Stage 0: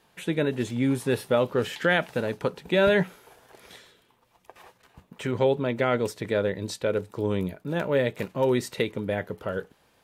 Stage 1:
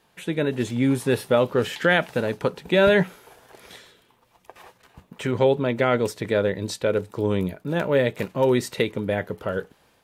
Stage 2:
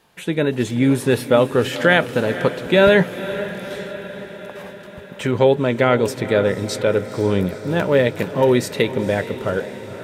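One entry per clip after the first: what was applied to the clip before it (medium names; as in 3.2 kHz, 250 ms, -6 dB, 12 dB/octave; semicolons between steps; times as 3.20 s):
level rider gain up to 3.5 dB
echo that smears into a reverb 485 ms, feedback 64%, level -13 dB; trim +4.5 dB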